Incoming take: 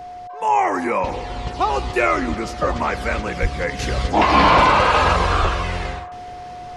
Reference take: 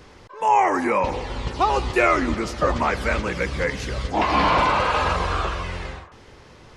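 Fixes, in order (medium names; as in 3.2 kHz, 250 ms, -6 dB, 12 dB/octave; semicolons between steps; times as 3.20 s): band-stop 720 Hz, Q 30; de-plosive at 3.41/5.41 s; trim 0 dB, from 3.79 s -5.5 dB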